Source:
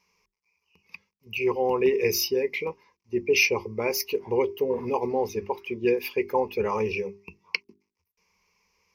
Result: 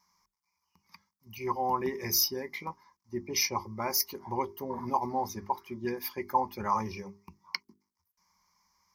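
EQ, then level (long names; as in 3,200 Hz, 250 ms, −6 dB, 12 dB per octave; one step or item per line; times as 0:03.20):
low-shelf EQ 160 Hz −8 dB
phaser with its sweep stopped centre 1,100 Hz, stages 4
+3.0 dB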